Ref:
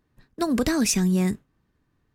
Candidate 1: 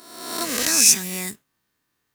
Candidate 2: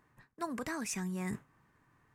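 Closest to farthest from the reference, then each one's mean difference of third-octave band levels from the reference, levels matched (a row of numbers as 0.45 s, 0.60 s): 2, 1; 3.5 dB, 10.5 dB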